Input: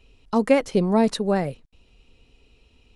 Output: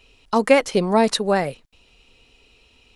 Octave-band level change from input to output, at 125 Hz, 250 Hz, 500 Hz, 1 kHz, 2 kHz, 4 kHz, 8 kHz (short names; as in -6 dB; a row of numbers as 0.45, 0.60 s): -1.5, -1.0, +3.0, +5.5, +7.5, +8.0, +8.0 dB